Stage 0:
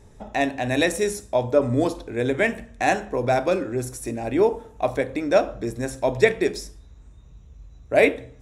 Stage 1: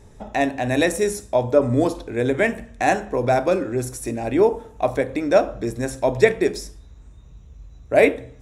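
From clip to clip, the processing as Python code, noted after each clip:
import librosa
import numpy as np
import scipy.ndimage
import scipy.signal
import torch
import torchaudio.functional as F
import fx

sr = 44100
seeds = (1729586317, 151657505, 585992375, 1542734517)

y = fx.dynamic_eq(x, sr, hz=3400.0, q=0.81, threshold_db=-36.0, ratio=4.0, max_db=-4)
y = y * librosa.db_to_amplitude(2.5)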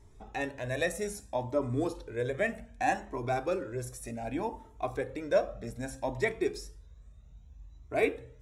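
y = fx.comb_cascade(x, sr, direction='rising', hz=0.64)
y = y * librosa.db_to_amplitude(-7.0)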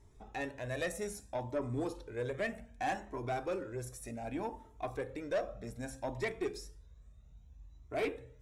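y = fx.tube_stage(x, sr, drive_db=24.0, bias=0.2)
y = y * librosa.db_to_amplitude(-3.5)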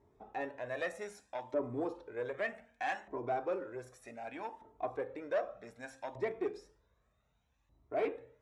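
y = fx.filter_lfo_bandpass(x, sr, shape='saw_up', hz=0.65, low_hz=490.0, high_hz=2100.0, q=0.71)
y = y * librosa.db_to_amplitude(2.5)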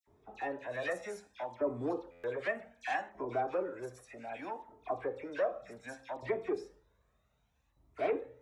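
y = fx.dispersion(x, sr, late='lows', ms=76.0, hz=2000.0)
y = fx.buffer_glitch(y, sr, at_s=(2.11,), block=512, repeats=10)
y = y * librosa.db_to_amplitude(1.5)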